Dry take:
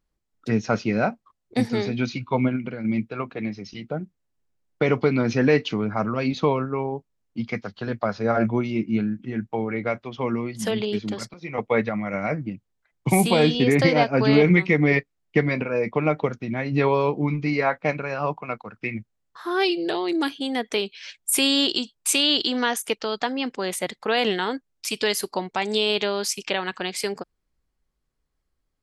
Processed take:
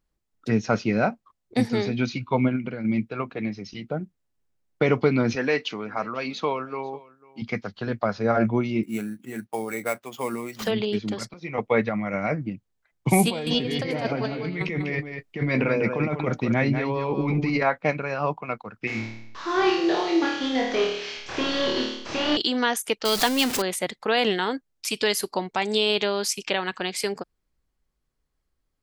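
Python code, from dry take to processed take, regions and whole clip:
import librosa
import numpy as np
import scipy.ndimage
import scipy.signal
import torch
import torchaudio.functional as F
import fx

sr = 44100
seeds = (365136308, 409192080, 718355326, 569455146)

y = fx.chain(x, sr, fx.highpass(hz=690.0, slope=6),
    fx.echo_single(ms=496, db=-22.5), at=(5.35, 7.42))
y = fx.chain(y, sr, fx.highpass(hz=430.0, slope=6),
    fx.sample_hold(seeds[0], rate_hz=10000.0, jitter_pct=0), at=(8.83, 10.67))
y = fx.chain(y, sr, fx.over_compress(threshold_db=-26.0, ratio=-1.0),
    fx.echo_single(ms=196, db=-7.0), at=(13.27, 17.63))
y = fx.chain(y, sr, fx.delta_mod(bps=32000, step_db=-35.5),
    fx.low_shelf(hz=120.0, db=-10.5),
    fx.room_flutter(wall_m=4.6, rt60_s=0.74), at=(18.87, 22.37))
y = fx.chain(y, sr, fx.zero_step(step_db=-27.0),
    fx.high_shelf(hz=3100.0, db=11.5), at=(23.05, 23.62))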